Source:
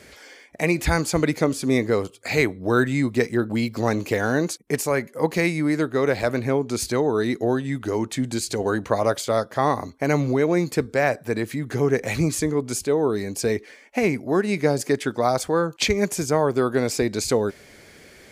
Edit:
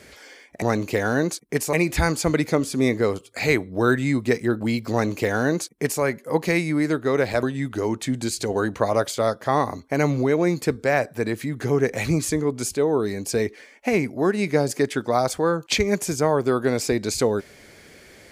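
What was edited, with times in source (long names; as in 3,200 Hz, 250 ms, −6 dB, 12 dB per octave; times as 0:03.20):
0:03.80–0:04.91: duplicate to 0:00.62
0:06.32–0:07.53: remove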